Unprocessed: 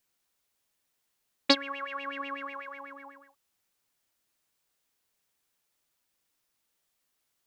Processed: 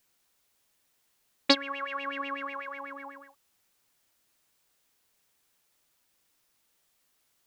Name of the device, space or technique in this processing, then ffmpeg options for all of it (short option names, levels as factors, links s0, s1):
parallel compression: -filter_complex "[0:a]asplit=2[s0][s1];[s1]acompressor=threshold=0.00501:ratio=6,volume=1[s2];[s0][s2]amix=inputs=2:normalize=0"